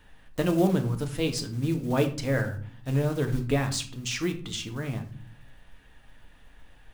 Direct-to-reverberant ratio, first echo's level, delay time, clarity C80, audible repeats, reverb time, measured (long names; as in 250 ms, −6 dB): 4.5 dB, no echo audible, no echo audible, 16.0 dB, no echo audible, 0.50 s